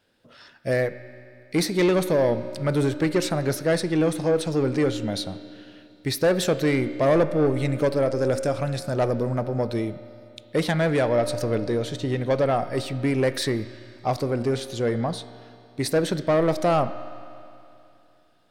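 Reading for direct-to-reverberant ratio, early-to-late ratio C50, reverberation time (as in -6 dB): 11.5 dB, 12.5 dB, 2.8 s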